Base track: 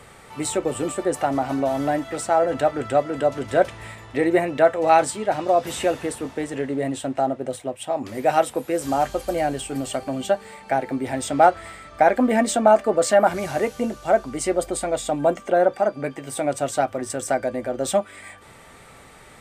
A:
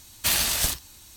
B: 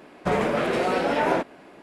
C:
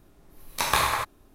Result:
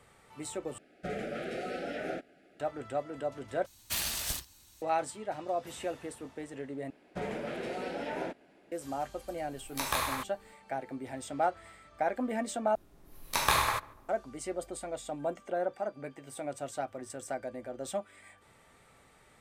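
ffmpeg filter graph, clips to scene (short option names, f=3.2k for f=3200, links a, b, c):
-filter_complex "[2:a]asplit=2[a][b];[3:a]asplit=2[c][d];[0:a]volume=-14.5dB[e];[a]asuperstop=centerf=1000:order=8:qfactor=2.1[f];[b]equalizer=f=1.1k:w=3.7:g=-10.5[g];[c]highshelf=f=9.5k:g=5[h];[d]asplit=2[i][j];[j]adelay=145,lowpass=f=1.3k:p=1,volume=-20dB,asplit=2[k][l];[l]adelay=145,lowpass=f=1.3k:p=1,volume=0.43,asplit=2[m][n];[n]adelay=145,lowpass=f=1.3k:p=1,volume=0.43[o];[i][k][m][o]amix=inputs=4:normalize=0[p];[e]asplit=5[q][r][s][t][u];[q]atrim=end=0.784[v];[f]atrim=end=1.82,asetpts=PTS-STARTPTS,volume=-13.5dB[w];[r]atrim=start=2.596:end=3.664[x];[1:a]atrim=end=1.16,asetpts=PTS-STARTPTS,volume=-10.5dB[y];[s]atrim=start=4.816:end=6.904[z];[g]atrim=end=1.82,asetpts=PTS-STARTPTS,volume=-13dB[aa];[t]atrim=start=8.716:end=12.754[ab];[p]atrim=end=1.34,asetpts=PTS-STARTPTS,volume=-3.5dB[ac];[u]atrim=start=14.086[ad];[h]atrim=end=1.34,asetpts=PTS-STARTPTS,volume=-9dB,afade=t=in:d=0.004:c=hsin,afade=t=out:st=1.336:d=0.004:c=hsin,adelay=9190[ae];[v][w]acrossfade=d=0.004:c1=hsin:c2=hsin[af];[af][x]acrossfade=d=0.004:c1=hsin:c2=hsin[ag];[ag][y]acrossfade=d=0.004:c1=hsin:c2=hsin[ah];[ah][z]acrossfade=d=0.004:c1=hsin:c2=hsin[ai];[ai][aa]acrossfade=d=0.004:c1=hsin:c2=hsin[aj];[aj][ab]acrossfade=d=0.004:c1=hsin:c2=hsin[ak];[ak][ac]acrossfade=d=0.004:c1=hsin:c2=hsin[al];[al][ad]acrossfade=d=0.004:c1=hsin:c2=hsin[am];[am][ae]amix=inputs=2:normalize=0"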